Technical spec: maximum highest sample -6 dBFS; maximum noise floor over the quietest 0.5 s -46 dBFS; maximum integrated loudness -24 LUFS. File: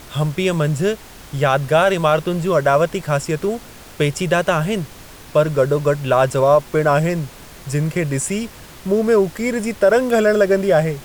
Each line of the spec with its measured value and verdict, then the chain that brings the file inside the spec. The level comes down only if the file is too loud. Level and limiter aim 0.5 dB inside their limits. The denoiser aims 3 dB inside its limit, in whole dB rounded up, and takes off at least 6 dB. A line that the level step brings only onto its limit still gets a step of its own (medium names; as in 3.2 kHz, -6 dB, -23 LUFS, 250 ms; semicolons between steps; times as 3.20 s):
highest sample -4.5 dBFS: fail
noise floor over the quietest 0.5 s -39 dBFS: fail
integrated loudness -18.0 LUFS: fail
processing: noise reduction 6 dB, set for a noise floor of -39 dBFS; trim -6.5 dB